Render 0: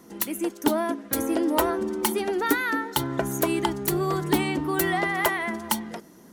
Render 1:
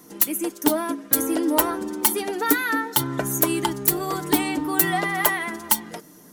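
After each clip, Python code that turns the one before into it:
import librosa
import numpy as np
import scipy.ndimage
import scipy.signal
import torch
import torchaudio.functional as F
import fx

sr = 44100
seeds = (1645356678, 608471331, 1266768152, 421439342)

y = fx.high_shelf(x, sr, hz=6400.0, db=10.0)
y = fx.hum_notches(y, sr, base_hz=50, count=3)
y = y + 0.45 * np.pad(y, (int(6.7 * sr / 1000.0), 0))[:len(y)]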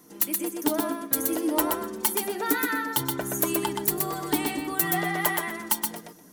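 y = fx.echo_feedback(x, sr, ms=124, feedback_pct=16, wet_db=-4)
y = y * 10.0 ** (-5.5 / 20.0)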